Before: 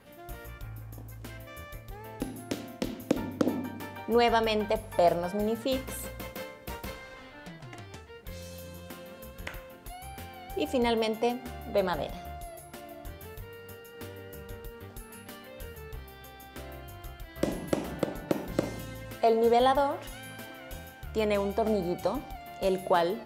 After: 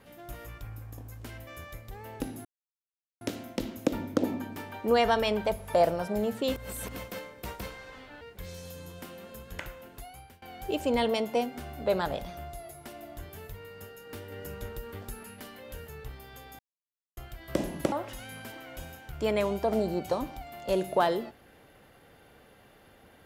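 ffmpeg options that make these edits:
ffmpeg -i in.wav -filter_complex "[0:a]asplit=11[link_01][link_02][link_03][link_04][link_05][link_06][link_07][link_08][link_09][link_10][link_11];[link_01]atrim=end=2.45,asetpts=PTS-STARTPTS,afade=type=out:start_time=2.446:duration=0.004:curve=hsin,apad=pad_dur=0.76[link_12];[link_02]atrim=start=2.45:end=5.802,asetpts=PTS-STARTPTS,afade=type=in:duration=0.004:curve=hsin[link_13];[link_03]atrim=start=5.798:end=6.202,asetpts=PTS-STARTPTS,areverse[link_14];[link_04]atrim=start=6.198:end=7.452[link_15];[link_05]atrim=start=8.088:end=10.3,asetpts=PTS-STARTPTS,afade=type=out:start_time=1.742:duration=0.47:silence=0.0668344[link_16];[link_06]atrim=start=10.3:end=14.202,asetpts=PTS-STARTPTS,afade=type=in:duration=0.004:curve=hsin:silence=0.0668344[link_17];[link_07]atrim=start=14.198:end=15.112,asetpts=PTS-STARTPTS,volume=3.5dB[link_18];[link_08]atrim=start=15.108:end=16.47,asetpts=PTS-STARTPTS,afade=type=out:start_time=1.358:duration=0.004:curve=hsin[link_19];[link_09]atrim=start=16.47:end=17.05,asetpts=PTS-STARTPTS,volume=0[link_20];[link_10]atrim=start=17.05:end=17.802,asetpts=PTS-STARTPTS,afade=type=in:duration=0.004:curve=hsin[link_21];[link_11]atrim=start=19.858[link_22];[link_12][link_13]concat=n=2:v=0:a=1[link_23];[link_23][link_14]acrossfade=duration=0.004:curve1=hsin:curve2=hsin[link_24];[link_24][link_15]acrossfade=duration=0.004:curve1=hsin:curve2=hsin[link_25];[link_16][link_17]concat=n=2:v=0:a=1[link_26];[link_25][link_26]acrossfade=duration=0.004:curve1=hsin:curve2=hsin[link_27];[link_27][link_18]acrossfade=duration=0.004:curve1=hsin:curve2=hsin[link_28];[link_19][link_20][link_21]concat=n=3:v=0:a=1[link_29];[link_28][link_29]acrossfade=duration=0.004:curve1=hsin:curve2=hsin[link_30];[link_30][link_22]acrossfade=duration=0.004:curve1=hsin:curve2=hsin" out.wav

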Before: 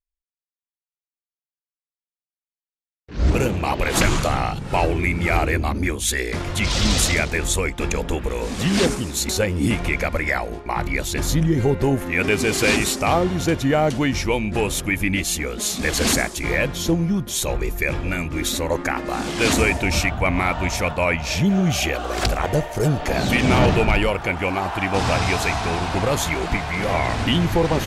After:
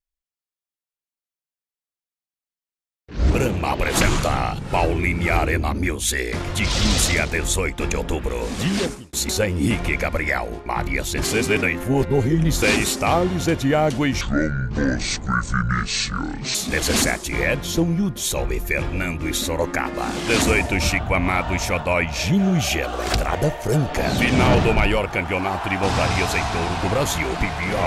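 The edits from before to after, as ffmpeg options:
ffmpeg -i in.wav -filter_complex "[0:a]asplit=6[link_01][link_02][link_03][link_04][link_05][link_06];[link_01]atrim=end=9.13,asetpts=PTS-STARTPTS,afade=type=out:start_time=8.6:duration=0.53[link_07];[link_02]atrim=start=9.13:end=11.232,asetpts=PTS-STARTPTS,afade=type=in:duration=0.004:curve=hsin[link_08];[link_03]atrim=start=11.228:end=12.622,asetpts=PTS-STARTPTS,areverse[link_09];[link_04]atrim=start=12.618:end=14.214[link_10];[link_05]atrim=start=14.21:end=15.66,asetpts=PTS-STARTPTS,asetrate=27342,aresample=44100,atrim=end_sample=103137,asetpts=PTS-STARTPTS[link_11];[link_06]atrim=start=15.656[link_12];[link_07][link_08]concat=n=2:v=0:a=1[link_13];[link_13][link_09]acrossfade=duration=0.004:curve1=hsin:curve2=hsin[link_14];[link_14][link_10]acrossfade=duration=0.004:curve1=hsin:curve2=hsin[link_15];[link_15][link_11]acrossfade=duration=0.004:curve1=hsin:curve2=hsin[link_16];[link_16][link_12]acrossfade=duration=0.004:curve1=hsin:curve2=hsin" out.wav

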